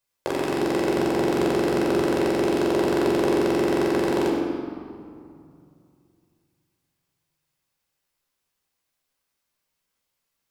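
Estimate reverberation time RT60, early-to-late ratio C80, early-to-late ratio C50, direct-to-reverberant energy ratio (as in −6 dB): 2.4 s, 1.5 dB, 0.0 dB, −3.5 dB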